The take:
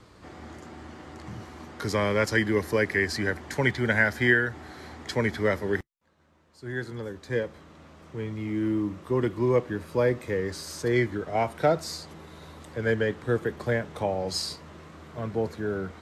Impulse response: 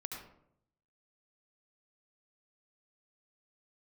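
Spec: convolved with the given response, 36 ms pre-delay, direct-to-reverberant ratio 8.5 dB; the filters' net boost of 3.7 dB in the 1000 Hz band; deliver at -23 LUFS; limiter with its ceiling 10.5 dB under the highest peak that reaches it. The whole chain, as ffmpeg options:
-filter_complex "[0:a]equalizer=f=1k:t=o:g=5,alimiter=limit=-17dB:level=0:latency=1,asplit=2[a][b];[1:a]atrim=start_sample=2205,adelay=36[c];[b][c]afir=irnorm=-1:irlink=0,volume=-7.5dB[d];[a][d]amix=inputs=2:normalize=0,volume=6dB"

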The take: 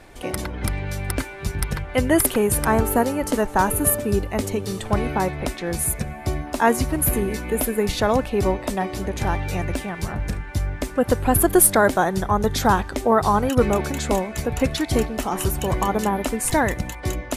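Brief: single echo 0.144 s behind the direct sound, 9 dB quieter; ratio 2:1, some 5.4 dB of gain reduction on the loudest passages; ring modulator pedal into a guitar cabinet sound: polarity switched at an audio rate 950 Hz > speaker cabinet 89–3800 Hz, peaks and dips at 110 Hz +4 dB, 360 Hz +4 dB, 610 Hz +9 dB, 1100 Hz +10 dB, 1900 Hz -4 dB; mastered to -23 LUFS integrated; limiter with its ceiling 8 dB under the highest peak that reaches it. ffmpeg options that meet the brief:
-af "acompressor=threshold=-21dB:ratio=2,alimiter=limit=-15.5dB:level=0:latency=1,aecho=1:1:144:0.355,aeval=exprs='val(0)*sgn(sin(2*PI*950*n/s))':c=same,highpass=89,equalizer=f=110:t=q:w=4:g=4,equalizer=f=360:t=q:w=4:g=4,equalizer=f=610:t=q:w=4:g=9,equalizer=f=1.1k:t=q:w=4:g=10,equalizer=f=1.9k:t=q:w=4:g=-4,lowpass=f=3.8k:w=0.5412,lowpass=f=3.8k:w=1.3066,volume=-1.5dB"

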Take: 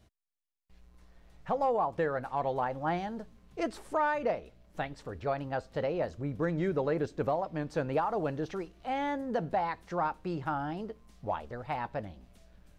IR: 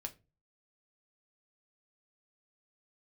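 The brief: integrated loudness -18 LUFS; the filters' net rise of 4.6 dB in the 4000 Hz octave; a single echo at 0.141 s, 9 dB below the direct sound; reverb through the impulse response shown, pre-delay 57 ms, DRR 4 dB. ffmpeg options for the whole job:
-filter_complex "[0:a]equalizer=f=4k:t=o:g=6,aecho=1:1:141:0.355,asplit=2[a][b];[1:a]atrim=start_sample=2205,adelay=57[c];[b][c]afir=irnorm=-1:irlink=0,volume=-1.5dB[d];[a][d]amix=inputs=2:normalize=0,volume=13dB"

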